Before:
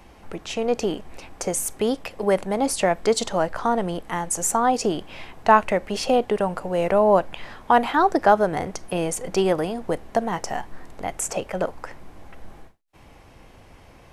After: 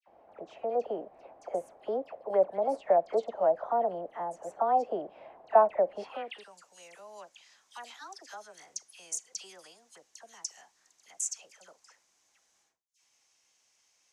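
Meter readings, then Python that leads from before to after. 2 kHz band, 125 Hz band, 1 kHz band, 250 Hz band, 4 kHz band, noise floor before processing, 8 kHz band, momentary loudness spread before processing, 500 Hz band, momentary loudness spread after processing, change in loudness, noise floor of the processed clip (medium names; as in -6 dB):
-19.5 dB, under -25 dB, -10.0 dB, -20.5 dB, -16.0 dB, -49 dBFS, -11.0 dB, 14 LU, -8.0 dB, 22 LU, -8.0 dB, -72 dBFS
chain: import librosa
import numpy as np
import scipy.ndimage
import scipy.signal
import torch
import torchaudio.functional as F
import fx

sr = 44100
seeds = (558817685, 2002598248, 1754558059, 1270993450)

y = fx.dispersion(x, sr, late='lows', ms=76.0, hz=1800.0)
y = fx.filter_sweep_bandpass(y, sr, from_hz=640.0, to_hz=6400.0, start_s=5.99, end_s=6.51, q=3.6)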